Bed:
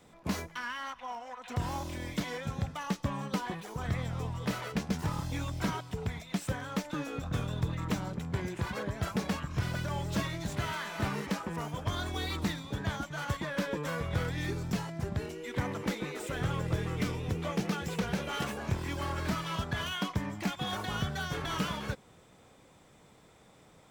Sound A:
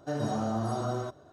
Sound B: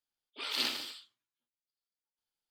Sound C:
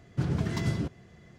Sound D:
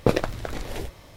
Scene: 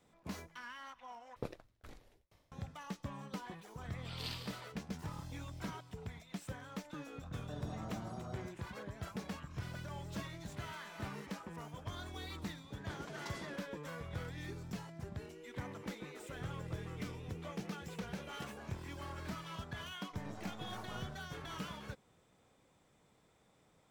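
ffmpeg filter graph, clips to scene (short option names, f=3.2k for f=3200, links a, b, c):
-filter_complex "[1:a]asplit=2[a][b];[0:a]volume=-11dB[c];[4:a]aeval=exprs='val(0)*pow(10,-32*if(lt(mod(2.1*n/s,1),2*abs(2.1)/1000),1-mod(2.1*n/s,1)/(2*abs(2.1)/1000),(mod(2.1*n/s,1)-2*abs(2.1)/1000)/(1-2*abs(2.1)/1000))/20)':c=same[d];[3:a]highpass=430[e];[b]aeval=exprs='max(val(0),0)':c=same[f];[c]asplit=2[g][h];[g]atrim=end=1.364[i];[d]atrim=end=1.16,asetpts=PTS-STARTPTS,volume=-17dB[j];[h]atrim=start=2.516[k];[2:a]atrim=end=2.5,asetpts=PTS-STARTPTS,volume=-12dB,afade=t=in:d=0.004:c=hsin,afade=t=out:st=2.496:d=0.004:c=hsin,adelay=3660[l];[a]atrim=end=1.32,asetpts=PTS-STARTPTS,volume=-16.5dB,afade=t=in:d=0.004:c=hsin,afade=t=out:st=1.316:d=0.004:c=hsin,adelay=7410[m];[e]atrim=end=1.38,asetpts=PTS-STARTPTS,volume=-9dB,afade=t=in:d=0.004:c=hsin,afade=t=out:st=1.376:d=0.004:c=hsin,adelay=12690[n];[f]atrim=end=1.32,asetpts=PTS-STARTPTS,volume=-15.5dB,afade=t=in:d=0.004:c=hsin,afade=t=out:st=1.316:d=0.004:c=hsin,adelay=20060[o];[i][j]acrossfade=d=0.004:c1=hsin:c2=hsin[p];[p][k]acrossfade=d=0.004:c1=hsin:c2=hsin[q];[q][l][m][n][o]amix=inputs=5:normalize=0"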